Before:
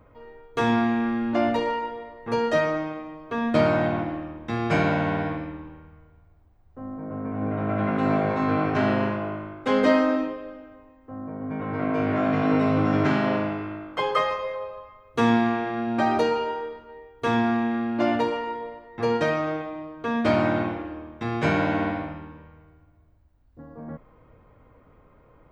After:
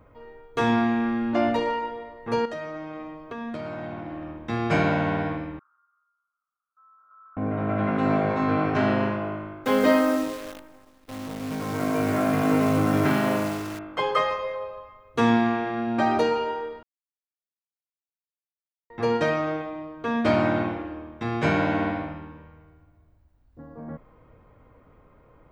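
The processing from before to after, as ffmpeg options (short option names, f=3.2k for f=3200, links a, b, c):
-filter_complex "[0:a]asettb=1/sr,asplit=3[a][b][c];[a]atrim=end=2.454[d];[b]atrim=start=2.45:end=4.43,asetpts=PTS-STARTPTS,afade=t=in:d=0.004:c=qsin,afade=t=out:st=1.976:d=0.004:c=qsin,acompressor=threshold=-31dB:ratio=6:attack=3.2:release=140:knee=1:detection=peak[e];[c]atrim=start=4.426[f];[d][e]acrossfade=d=0.004:c1=hsin:c2=qsin[g];[g][f]acrossfade=d=0.004:c1=qsin:c2=hsin,asettb=1/sr,asplit=3[h][i][j];[h]atrim=end=5.594[k];[i]atrim=start=5.59:end=7.37,asetpts=PTS-STARTPTS,afade=t=in:d=0.004:c=qsin,afade=t=out:st=1.776:d=0.004:c=qsin,asuperpass=centerf=1300:order=4:qfactor=7.4[l];[j]atrim=start=7.366[m];[k][l]acrossfade=d=0.004:c1=hsin:c2=qsin[n];[n][m]acrossfade=d=0.004:c1=qsin:c2=hsin,asettb=1/sr,asplit=3[o][p][q];[o]atrim=end=9.654[r];[p]atrim=start=9.65:end=13.79,asetpts=PTS-STARTPTS,afade=t=in:d=0.004:c=qsin,afade=t=out:st=4.136:d=0.004:c=qsin,acrusher=bits=7:dc=4:mix=0:aa=0.000001[s];[q]atrim=start=13.786[t];[r][s]acrossfade=d=0.004:c1=hsin:c2=qsin[u];[u][t]acrossfade=d=0.004:c1=qsin:c2=hsin,asplit=3[v][w][x];[v]atrim=end=16.83,asetpts=PTS-STARTPTS,afade=t=out:st=16.826:d=0.004:c=hsin[y];[w]atrim=start=16.83:end=18.9,asetpts=PTS-STARTPTS,volume=0[z];[x]atrim=start=18.9,asetpts=PTS-STARTPTS,afade=t=in:d=0.004:c=hsin[aa];[y][z][aa]concat=n=3:v=0:a=1"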